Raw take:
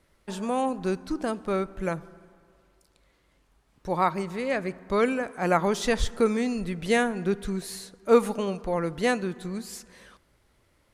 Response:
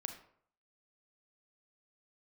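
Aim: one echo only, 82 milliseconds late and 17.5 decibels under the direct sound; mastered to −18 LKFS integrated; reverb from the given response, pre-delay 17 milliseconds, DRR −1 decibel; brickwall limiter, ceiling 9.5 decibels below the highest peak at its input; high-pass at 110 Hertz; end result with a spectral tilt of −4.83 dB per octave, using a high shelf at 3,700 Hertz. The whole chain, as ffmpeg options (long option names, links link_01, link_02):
-filter_complex "[0:a]highpass=110,highshelf=frequency=3700:gain=3.5,alimiter=limit=-16.5dB:level=0:latency=1,aecho=1:1:82:0.133,asplit=2[link_01][link_02];[1:a]atrim=start_sample=2205,adelay=17[link_03];[link_02][link_03]afir=irnorm=-1:irlink=0,volume=2.5dB[link_04];[link_01][link_04]amix=inputs=2:normalize=0,volume=8dB"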